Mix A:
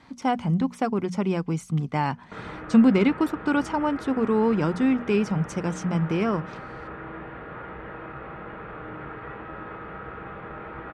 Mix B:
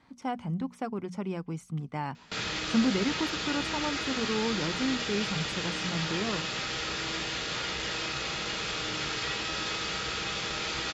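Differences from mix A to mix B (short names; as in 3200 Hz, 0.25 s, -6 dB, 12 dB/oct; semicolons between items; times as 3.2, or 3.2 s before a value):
speech -9.0 dB; background: remove inverse Chebyshev low-pass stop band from 6500 Hz, stop band 70 dB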